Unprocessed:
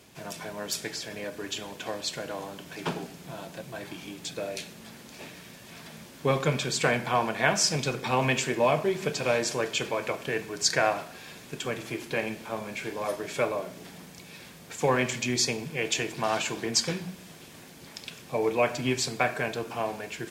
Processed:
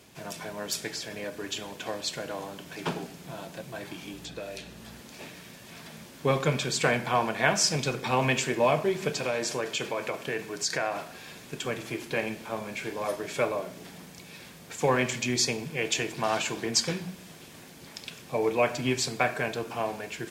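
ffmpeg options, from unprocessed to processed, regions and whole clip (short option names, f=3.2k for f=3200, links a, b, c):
-filter_complex "[0:a]asettb=1/sr,asplit=3[a][b][c];[a]atrim=end=4.134[d];[b]atrim=start=4.13:end=5.01,asetpts=PTS-STARTPTS,afade=t=in:d=0.004:c=qsin,afade=t=out:st=0.876:d=0.004:c=qsin,aeval=exprs='val(0)+0.00224*(sin(2*PI*60*n/s)+sin(2*PI*2*60*n/s)/2+sin(2*PI*3*60*n/s)/3+sin(2*PI*4*60*n/s)/4+sin(2*PI*5*60*n/s)/5)':c=same,bandreject=f=2.2k:w=15,acrossover=split=1500|4400[e][f][g];[e]acompressor=threshold=-36dB:ratio=4[h];[f]acompressor=threshold=-42dB:ratio=4[i];[g]acompressor=threshold=-50dB:ratio=4[j];[h][i][j]amix=inputs=3:normalize=0[k];[c]atrim=start=5.006[l];[d][k]acrossfade=d=0.004:c1=hsin:c2=qsin[m];[m][l]acrossfade=d=0.004:c1=qsin:c2=hsin,asettb=1/sr,asplit=3[n][o][p];[n]atrim=end=9.184[q];[o]atrim=start=9.18:end=11.06,asetpts=PTS-STARTPTS,afade=t=in:d=0.004:c=qsin,afade=t=out:st=1.876:d=0.004:c=qsin,equalizer=f=64:t=o:w=1.1:g=-9.5,acompressor=threshold=-26dB:ratio=2.5:attack=3.2:release=140:knee=1:detection=peak[r];[p]atrim=start=11.056[s];[q][r]acrossfade=d=0.004:c1=hsin:c2=qsin[t];[t][s]acrossfade=d=0.004:c1=qsin:c2=hsin"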